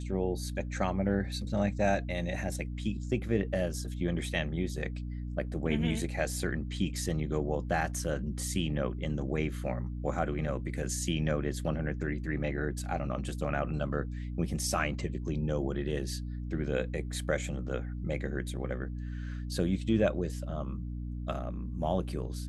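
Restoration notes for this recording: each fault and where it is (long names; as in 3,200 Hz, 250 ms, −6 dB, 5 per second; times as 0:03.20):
mains hum 60 Hz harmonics 5 −37 dBFS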